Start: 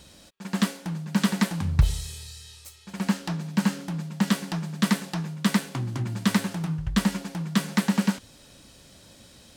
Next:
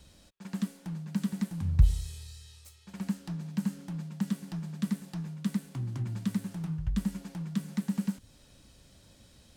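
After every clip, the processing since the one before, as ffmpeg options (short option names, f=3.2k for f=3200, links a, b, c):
-filter_complex "[0:a]lowshelf=f=110:g=11,acrossover=split=300|7300[a][b][c];[b]acompressor=threshold=-38dB:ratio=6[d];[c]alimiter=level_in=9dB:limit=-24dB:level=0:latency=1:release=99,volume=-9dB[e];[a][d][e]amix=inputs=3:normalize=0,volume=-9dB"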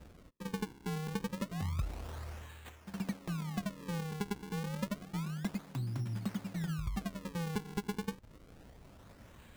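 -filter_complex "[0:a]acrossover=split=4700[a][b];[a]acompressor=threshold=-36dB:ratio=6[c];[c][b]amix=inputs=2:normalize=0,acrusher=samples=40:mix=1:aa=0.000001:lfo=1:lforange=64:lforate=0.29,volume=2dB"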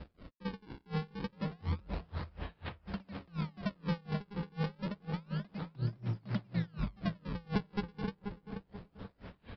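-filter_complex "[0:a]aresample=11025,asoftclip=type=tanh:threshold=-35.5dB,aresample=44100,asplit=2[a][b];[b]adelay=483,lowpass=f=1.6k:p=1,volume=-5dB,asplit=2[c][d];[d]adelay=483,lowpass=f=1.6k:p=1,volume=0.43,asplit=2[e][f];[f]adelay=483,lowpass=f=1.6k:p=1,volume=0.43,asplit=2[g][h];[h]adelay=483,lowpass=f=1.6k:p=1,volume=0.43,asplit=2[i][j];[j]adelay=483,lowpass=f=1.6k:p=1,volume=0.43[k];[a][c][e][g][i][k]amix=inputs=6:normalize=0,aeval=exprs='val(0)*pow(10,-30*(0.5-0.5*cos(2*PI*4.1*n/s))/20)':c=same,volume=9dB"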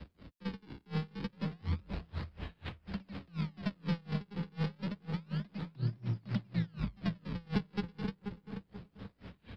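-filter_complex "[0:a]highpass=53,acrossover=split=150|360|1800[a][b][c][d];[c]aeval=exprs='max(val(0),0)':c=same[e];[a][b][e][d]amix=inputs=4:normalize=0,volume=1dB"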